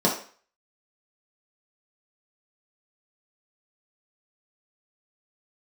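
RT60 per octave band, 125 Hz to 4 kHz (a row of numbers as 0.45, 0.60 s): 0.30, 0.40, 0.40, 0.45, 0.45, 0.40 s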